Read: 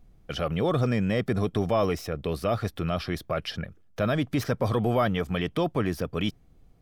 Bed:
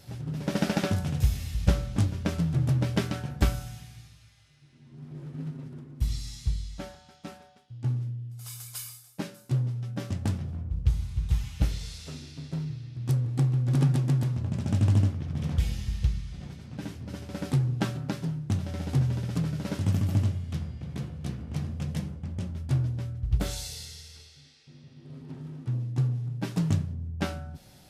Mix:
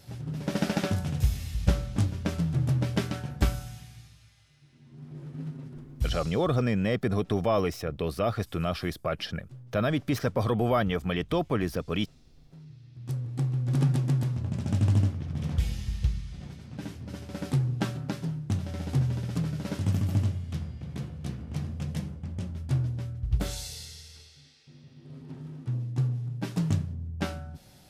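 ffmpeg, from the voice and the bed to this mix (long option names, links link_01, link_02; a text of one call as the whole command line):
ffmpeg -i stem1.wav -i stem2.wav -filter_complex "[0:a]adelay=5750,volume=-1dB[link_01];[1:a]volume=18.5dB,afade=type=out:start_time=6.13:duration=0.35:silence=0.105925,afade=type=in:start_time=12.49:duration=1.39:silence=0.105925[link_02];[link_01][link_02]amix=inputs=2:normalize=0" out.wav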